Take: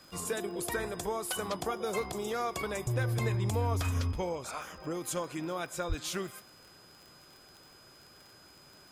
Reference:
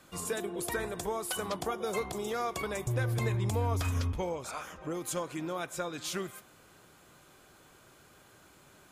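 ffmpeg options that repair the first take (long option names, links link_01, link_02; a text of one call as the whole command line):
ffmpeg -i in.wav -filter_complex "[0:a]adeclick=threshold=4,bandreject=frequency=5000:width=30,asplit=3[link_01][link_02][link_03];[link_01]afade=type=out:start_time=5.88:duration=0.02[link_04];[link_02]highpass=frequency=140:width=0.5412,highpass=frequency=140:width=1.3066,afade=type=in:start_time=5.88:duration=0.02,afade=type=out:start_time=6:duration=0.02[link_05];[link_03]afade=type=in:start_time=6:duration=0.02[link_06];[link_04][link_05][link_06]amix=inputs=3:normalize=0" out.wav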